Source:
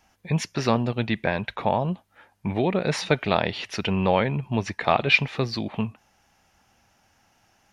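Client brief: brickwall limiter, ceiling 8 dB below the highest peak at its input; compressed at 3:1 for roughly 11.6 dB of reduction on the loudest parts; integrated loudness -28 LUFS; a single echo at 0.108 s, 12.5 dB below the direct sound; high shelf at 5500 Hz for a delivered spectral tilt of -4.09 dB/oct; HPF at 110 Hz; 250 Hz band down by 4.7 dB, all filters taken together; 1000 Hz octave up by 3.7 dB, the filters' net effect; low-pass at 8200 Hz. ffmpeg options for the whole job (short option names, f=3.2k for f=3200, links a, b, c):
-af "highpass=110,lowpass=8.2k,equalizer=f=250:t=o:g=-6.5,equalizer=f=1k:t=o:g=5,highshelf=f=5.5k:g=8.5,acompressor=threshold=-28dB:ratio=3,alimiter=limit=-18.5dB:level=0:latency=1,aecho=1:1:108:0.237,volume=5dB"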